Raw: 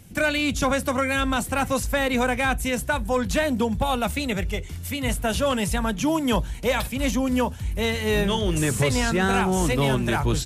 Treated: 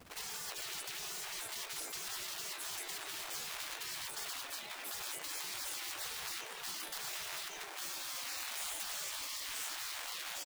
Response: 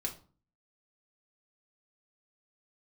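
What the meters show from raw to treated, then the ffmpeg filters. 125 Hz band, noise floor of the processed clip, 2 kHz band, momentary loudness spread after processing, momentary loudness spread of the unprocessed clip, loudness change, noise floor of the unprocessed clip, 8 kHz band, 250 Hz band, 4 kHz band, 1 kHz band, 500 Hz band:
-39.5 dB, -47 dBFS, -18.0 dB, 3 LU, 4 LU, -16.5 dB, -35 dBFS, -8.0 dB, -38.5 dB, -10.0 dB, -21.5 dB, -30.5 dB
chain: -filter_complex "[0:a]afftdn=nr=34:nf=-33,asplit=2[a][b];[b]highpass=f=720:p=1,volume=23dB,asoftclip=type=tanh:threshold=-11.5dB[c];[a][c]amix=inputs=2:normalize=0,lowpass=f=1.2k:p=1,volume=-6dB,equalizer=f=125:t=o:w=1:g=8,equalizer=f=1k:t=o:w=1:g=-11,equalizer=f=4k:t=o:w=1:g=6,equalizer=f=8k:t=o:w=1:g=6,acrusher=bits=3:mode=log:mix=0:aa=0.000001,dynaudnorm=f=330:g=7:m=4.5dB,bandreject=f=223.5:t=h:w=4,bandreject=f=447:t=h:w=4,bandreject=f=670.5:t=h:w=4,bandreject=f=894:t=h:w=4,bandreject=f=1.1175k:t=h:w=4,bandreject=f=1.341k:t=h:w=4,bandreject=f=1.5645k:t=h:w=4,bandreject=f=1.788k:t=h:w=4,bandreject=f=2.0115k:t=h:w=4,bandreject=f=2.235k:t=h:w=4,bandreject=f=2.4585k:t=h:w=4,bandreject=f=2.682k:t=h:w=4,bandreject=f=2.9055k:t=h:w=4,bandreject=f=3.129k:t=h:w=4,bandreject=f=3.3525k:t=h:w=4,bandreject=f=3.576k:t=h:w=4,bandreject=f=3.7995k:t=h:w=4,bandreject=f=4.023k:t=h:w=4,bandreject=f=4.2465k:t=h:w=4,bandreject=f=4.47k:t=h:w=4,bandreject=f=4.6935k:t=h:w=4,bandreject=f=4.917k:t=h:w=4,bandreject=f=5.1405k:t=h:w=4,bandreject=f=5.364k:t=h:w=4,bandreject=f=5.5875k:t=h:w=4,bandreject=f=5.811k:t=h:w=4,bandreject=f=6.0345k:t=h:w=4,bandreject=f=6.258k:t=h:w=4,bandreject=f=6.4815k:t=h:w=4,bandreject=f=6.705k:t=h:w=4,bandreject=f=6.9285k:t=h:w=4,bandreject=f=7.152k:t=h:w=4,bandreject=f=7.3755k:t=h:w=4,bandreject=f=7.599k:t=h:w=4,bandreject=f=7.8225k:t=h:w=4,bandreject=f=8.046k:t=h:w=4,bandreject=f=8.2695k:t=h:w=4,bandreject=f=8.493k:t=h:w=4,asplit=2[d][e];[e]aecho=0:1:413|826|1239:0.141|0.0579|0.0237[f];[d][f]amix=inputs=2:normalize=0,adynamicequalizer=threshold=0.0282:dfrequency=160:dqfactor=1.8:tfrequency=160:tqfactor=1.8:attack=5:release=100:ratio=0.375:range=3:mode=cutabove:tftype=bell,acompressor=threshold=-33dB:ratio=4,afftfilt=real='re*lt(hypot(re,im),0.0141)':imag='im*lt(hypot(re,im),0.0141)':win_size=1024:overlap=0.75,volume=4dB"

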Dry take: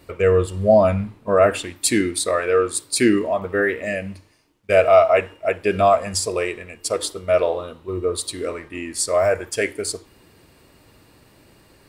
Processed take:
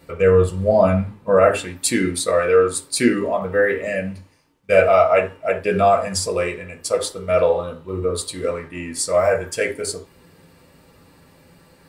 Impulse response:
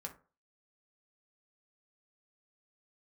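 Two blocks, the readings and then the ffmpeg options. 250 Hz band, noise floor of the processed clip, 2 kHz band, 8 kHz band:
0.0 dB, -53 dBFS, +1.0 dB, -0.5 dB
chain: -filter_complex "[1:a]atrim=start_sample=2205,afade=t=out:st=0.15:d=0.01,atrim=end_sample=7056[a];[0:a][a]afir=irnorm=-1:irlink=0,volume=4dB"

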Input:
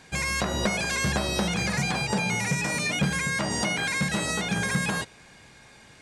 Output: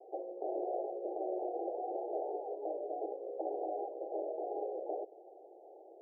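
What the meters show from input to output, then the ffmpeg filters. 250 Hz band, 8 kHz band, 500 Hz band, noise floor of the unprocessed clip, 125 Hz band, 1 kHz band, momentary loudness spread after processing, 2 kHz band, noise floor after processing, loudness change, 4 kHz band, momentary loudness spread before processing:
-16.5 dB, under -40 dB, -2.0 dB, -52 dBFS, under -40 dB, -8.0 dB, 14 LU, under -40 dB, -56 dBFS, -13.5 dB, under -40 dB, 1 LU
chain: -af "afftfilt=real='re*lt(hypot(re,im),0.178)':imag='im*lt(hypot(re,im),0.178)':win_size=1024:overlap=0.75,acompressor=threshold=-34dB:ratio=6,asuperpass=centerf=510:order=20:qfactor=1.1,volume=6dB"

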